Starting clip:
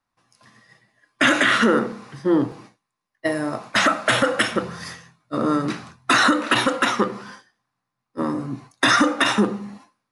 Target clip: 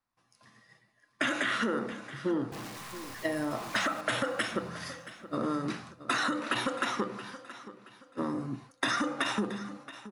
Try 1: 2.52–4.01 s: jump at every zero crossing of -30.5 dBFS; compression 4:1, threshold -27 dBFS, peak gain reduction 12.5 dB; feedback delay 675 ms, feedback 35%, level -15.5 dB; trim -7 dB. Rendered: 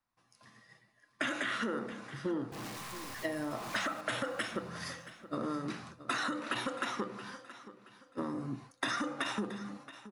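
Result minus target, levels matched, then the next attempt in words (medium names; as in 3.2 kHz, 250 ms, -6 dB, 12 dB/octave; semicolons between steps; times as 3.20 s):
compression: peak gain reduction +5 dB
2.52–4.01 s: jump at every zero crossing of -30.5 dBFS; compression 4:1, threshold -20.5 dBFS, peak gain reduction 7.5 dB; feedback delay 675 ms, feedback 35%, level -15.5 dB; trim -7 dB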